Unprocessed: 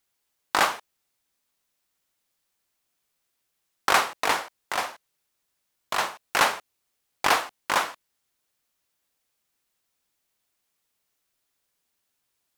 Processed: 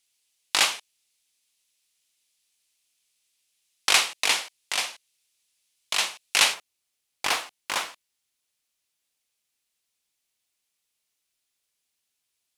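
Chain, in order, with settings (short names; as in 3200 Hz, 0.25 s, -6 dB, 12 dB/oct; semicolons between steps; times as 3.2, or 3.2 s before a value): band shelf 5000 Hz +15 dB 2.7 oct, from 6.53 s +8 dB; gain -7.5 dB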